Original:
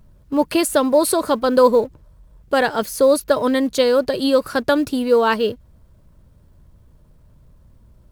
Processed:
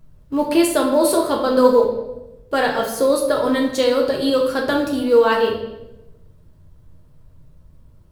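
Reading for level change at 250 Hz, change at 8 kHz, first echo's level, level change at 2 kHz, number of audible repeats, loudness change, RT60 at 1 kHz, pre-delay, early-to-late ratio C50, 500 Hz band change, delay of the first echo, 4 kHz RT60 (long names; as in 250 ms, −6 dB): +0.5 dB, −1.5 dB, no echo audible, 0.0 dB, no echo audible, 0.0 dB, 0.85 s, 6 ms, 5.5 dB, 0.0 dB, no echo audible, 0.75 s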